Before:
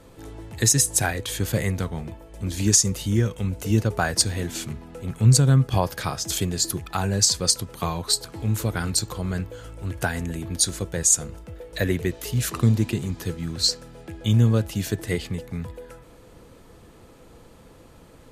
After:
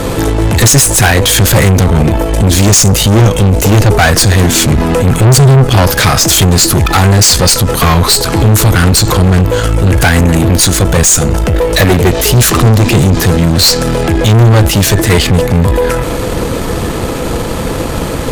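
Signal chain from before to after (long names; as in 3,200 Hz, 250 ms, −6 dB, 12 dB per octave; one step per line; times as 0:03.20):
in parallel at +2 dB: downward compressor, threshold −26 dBFS, peak gain reduction 14.5 dB
on the sum: tube saturation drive 27 dB, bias 0.7
boost into a limiter +32 dB
level −1 dB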